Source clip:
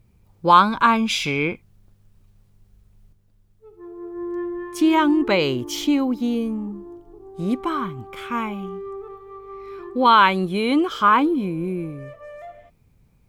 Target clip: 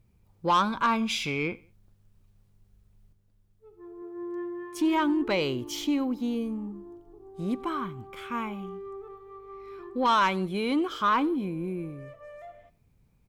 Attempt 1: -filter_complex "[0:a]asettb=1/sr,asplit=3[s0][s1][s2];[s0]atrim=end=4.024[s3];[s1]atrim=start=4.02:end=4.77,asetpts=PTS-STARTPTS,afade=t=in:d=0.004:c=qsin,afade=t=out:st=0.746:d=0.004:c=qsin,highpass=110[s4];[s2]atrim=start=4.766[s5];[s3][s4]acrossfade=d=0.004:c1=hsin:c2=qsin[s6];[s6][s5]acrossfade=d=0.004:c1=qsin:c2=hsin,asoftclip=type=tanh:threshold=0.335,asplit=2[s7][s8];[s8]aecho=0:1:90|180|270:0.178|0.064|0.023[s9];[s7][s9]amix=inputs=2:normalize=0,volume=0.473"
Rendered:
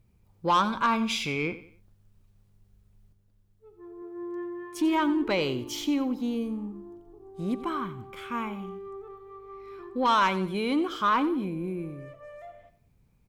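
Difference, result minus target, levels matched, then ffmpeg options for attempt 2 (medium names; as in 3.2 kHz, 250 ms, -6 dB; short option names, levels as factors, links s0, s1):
echo-to-direct +9 dB
-filter_complex "[0:a]asettb=1/sr,asplit=3[s0][s1][s2];[s0]atrim=end=4.024[s3];[s1]atrim=start=4.02:end=4.77,asetpts=PTS-STARTPTS,afade=t=in:d=0.004:c=qsin,afade=t=out:st=0.746:d=0.004:c=qsin,highpass=110[s4];[s2]atrim=start=4.766[s5];[s3][s4]acrossfade=d=0.004:c1=hsin:c2=qsin[s6];[s6][s5]acrossfade=d=0.004:c1=qsin:c2=hsin,asoftclip=type=tanh:threshold=0.335,asplit=2[s7][s8];[s8]aecho=0:1:90|180:0.0631|0.0227[s9];[s7][s9]amix=inputs=2:normalize=0,volume=0.473"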